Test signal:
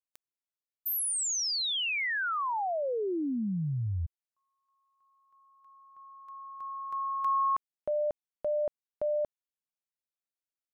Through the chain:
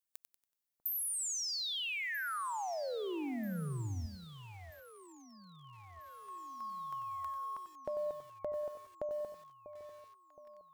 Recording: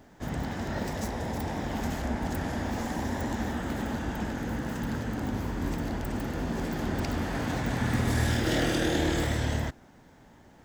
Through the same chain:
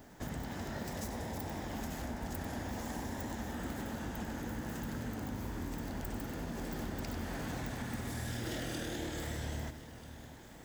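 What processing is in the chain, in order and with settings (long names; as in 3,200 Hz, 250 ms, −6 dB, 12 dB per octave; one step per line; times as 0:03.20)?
high-shelf EQ 7,600 Hz +10 dB
downward compressor 5 to 1, threshold −37 dBFS
on a send: delay that swaps between a low-pass and a high-pass 644 ms, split 1,000 Hz, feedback 71%, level −13 dB
on the sum: feedback echo at a low word length 94 ms, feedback 35%, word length 9 bits, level −9.5 dB
level −1 dB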